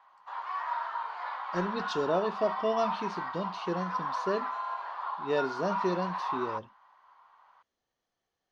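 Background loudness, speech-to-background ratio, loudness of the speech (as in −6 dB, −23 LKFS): −35.5 LKFS, 2.0 dB, −33.5 LKFS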